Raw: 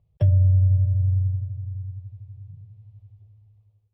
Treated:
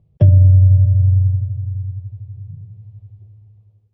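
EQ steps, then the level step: distance through air 79 m; peaking EQ 240 Hz +14.5 dB 1.7 oct; +4.0 dB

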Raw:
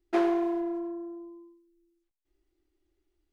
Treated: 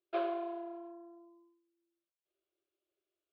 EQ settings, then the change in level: cabinet simulation 240–4300 Hz, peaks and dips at 420 Hz +3 dB, 610 Hz +10 dB, 930 Hz +6 dB, 2 kHz +7 dB; treble shelf 3.1 kHz +6.5 dB; static phaser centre 1.3 kHz, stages 8; -8.5 dB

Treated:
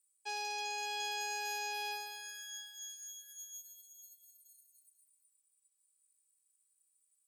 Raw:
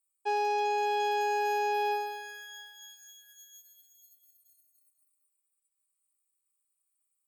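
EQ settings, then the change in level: band-pass filter 7.9 kHz, Q 0.88; +7.0 dB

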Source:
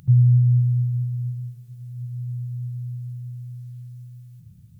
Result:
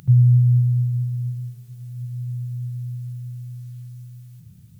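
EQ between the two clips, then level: bass shelf 78 Hz -11 dB; peaking EQ 140 Hz -3 dB 2.9 oct; +7.5 dB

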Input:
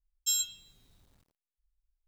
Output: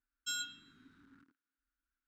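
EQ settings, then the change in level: two resonant band-passes 630 Hz, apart 2.4 oct; +18.0 dB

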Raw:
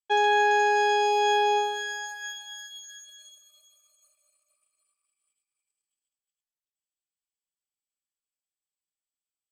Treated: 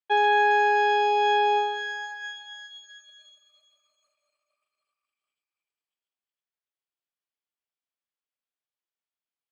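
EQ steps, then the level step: high-pass 430 Hz 6 dB/octave; distance through air 210 m; +3.5 dB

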